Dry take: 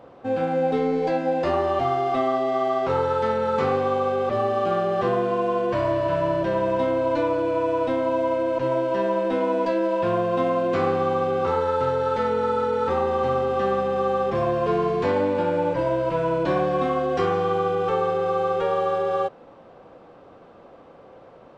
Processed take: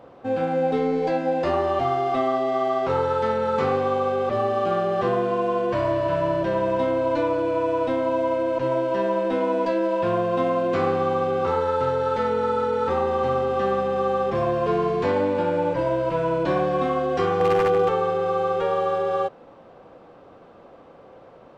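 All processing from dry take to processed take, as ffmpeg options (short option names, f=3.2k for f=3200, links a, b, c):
-filter_complex "[0:a]asettb=1/sr,asplit=3[a][b][c];[a]atrim=end=17.404[d];[b]atrim=start=17.4:end=17.89,asetpts=PTS-STARTPTS,afade=t=in:d=0.004:c=qsin,afade=t=out:st=0.486:d=0.004:c=qsin,equalizer=f=470:w=0.48:g=5,aeval=exprs='val(0)+0.0112*sin(2*PI*790*n/s)':c=same,aeval=exprs='0.224*(abs(mod(val(0)/0.224+3,4)-2)-1)':c=same[e];[c]atrim=start=17.886[f];[d][e]acrossfade=d=0.004:c1=hsin:c2=qsin[g];[g][f]acrossfade=d=0.004:c1=qsin:c2=hsin"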